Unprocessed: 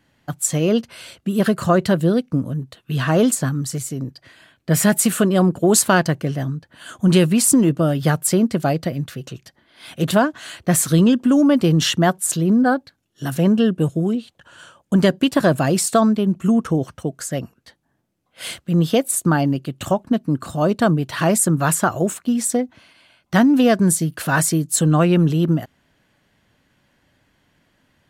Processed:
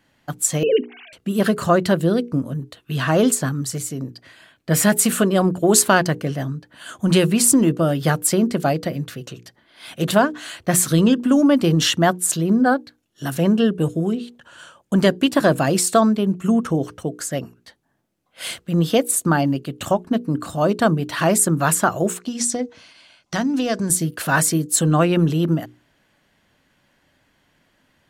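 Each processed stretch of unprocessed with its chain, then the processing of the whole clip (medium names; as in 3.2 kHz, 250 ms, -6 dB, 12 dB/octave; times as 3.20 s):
0.63–1.13 s: formants replaced by sine waves + de-esser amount 90%
22.20–23.90 s: low-pass 10 kHz + peaking EQ 5.8 kHz +9 dB 1.1 oct + compression 3:1, threshold -19 dBFS
whole clip: peaking EQ 85 Hz -4 dB 2.5 oct; hum notches 60/120/180/240/300/360/420/480 Hz; trim +1 dB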